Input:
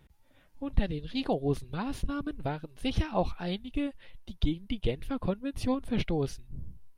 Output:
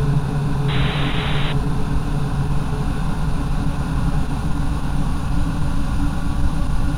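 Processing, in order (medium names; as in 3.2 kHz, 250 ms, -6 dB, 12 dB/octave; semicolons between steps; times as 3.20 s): resonant low shelf 180 Hz +9 dB, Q 1.5; Paulstretch 31×, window 1.00 s, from 1.74 s; painted sound noise, 0.68–1.53 s, 290–4000 Hz -36 dBFS; attacks held to a fixed rise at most 180 dB/s; trim +8.5 dB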